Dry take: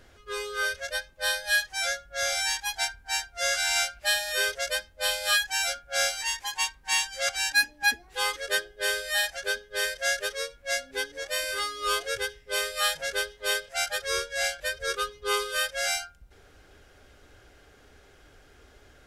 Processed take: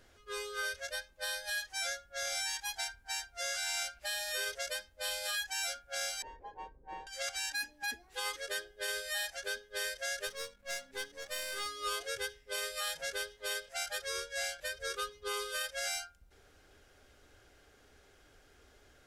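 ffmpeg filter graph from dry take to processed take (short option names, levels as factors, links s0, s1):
-filter_complex "[0:a]asettb=1/sr,asplit=3[s0][s1][s2];[s0]atrim=end=6.224[s3];[s1]atrim=start=6.22:end=7.07,asetpts=PTS-STARTPTS,afade=t=in:d=0.004:c=qsin,afade=t=out:st=0.846:d=0.004:c=qsin,lowpass=f=470:t=q:w=3.3,acontrast=38[s4];[s2]atrim=start=7.066[s5];[s3][s4]acrossfade=d=0.004:c1=hsin:c2=qsin[s6];[s6][s5]acrossfade=d=0.004:c1=qsin:c2=hsin,asettb=1/sr,asplit=3[s7][s8][s9];[s7]atrim=end=10.274[s10];[s8]atrim=start=10.27:end=11.66,asetpts=PTS-STARTPTS,afade=t=in:d=0.004:c=qsin,afade=t=out:st=1.386:d=0.004:c=qsin,aeval=exprs='if(lt(val(0),0),0.447*val(0),val(0))':c=same,acompressor=mode=upward:threshold=0.002:ratio=2.5:attack=3.2:release=140:knee=2.83:detection=peak,aeval=exprs='val(0)+0.00178*(sin(2*PI*50*n/s)+sin(2*PI*2*50*n/s)/2+sin(2*PI*3*50*n/s)/3+sin(2*PI*4*50*n/s)/4+sin(2*PI*5*50*n/s)/5)':c=same[s11];[s9]atrim=start=11.656[s12];[s10][s11]acrossfade=d=0.004:c1=hsin:c2=qsin[s13];[s13][s12]acrossfade=d=0.004:c1=qsin:c2=hsin,bass=f=250:g=-1,treble=f=4000:g=3,bandreject=f=50:t=h:w=6,bandreject=f=100:t=h:w=6,bandreject=f=150:t=h:w=6,alimiter=limit=0.1:level=0:latency=1:release=44,volume=0.447"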